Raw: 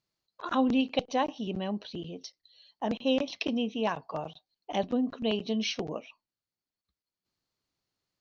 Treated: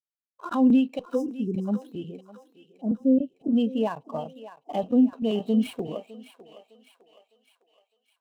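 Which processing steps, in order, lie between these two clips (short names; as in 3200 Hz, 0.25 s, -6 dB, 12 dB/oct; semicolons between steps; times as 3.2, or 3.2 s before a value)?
switching dead time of 0.099 ms; 1.13–1.68 spectral delete 520–4900 Hz; 2.18–3.53 EQ curve 260 Hz 0 dB, 710 Hz -9 dB, 1200 Hz -29 dB; limiter -21 dBFS, peak gain reduction 8 dB; thinning echo 0.607 s, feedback 66%, high-pass 440 Hz, level -8.5 dB; spectral expander 1.5:1; gain +7.5 dB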